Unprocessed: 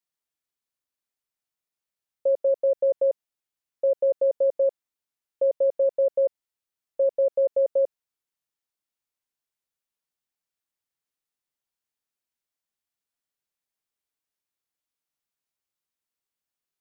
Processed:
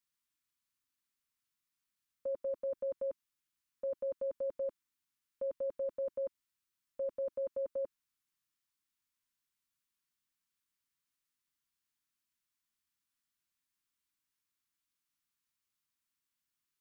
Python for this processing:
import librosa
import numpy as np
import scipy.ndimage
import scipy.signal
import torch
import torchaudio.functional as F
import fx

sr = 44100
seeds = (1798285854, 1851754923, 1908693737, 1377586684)

y = fx.band_shelf(x, sr, hz=570.0, db=-16.0, octaves=1.2)
y = y * librosa.db_to_amplitude(1.0)